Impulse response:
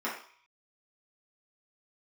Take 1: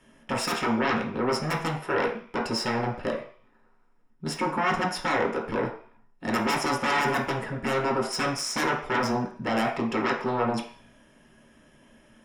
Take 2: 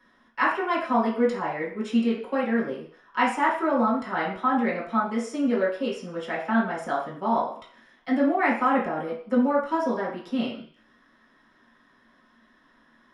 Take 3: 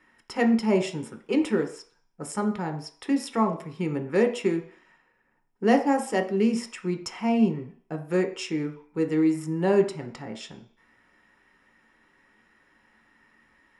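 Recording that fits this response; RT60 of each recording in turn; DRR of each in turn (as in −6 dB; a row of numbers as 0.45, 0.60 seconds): 2; 0.50, 0.50, 0.50 seconds; −1.5, −8.0, 4.5 decibels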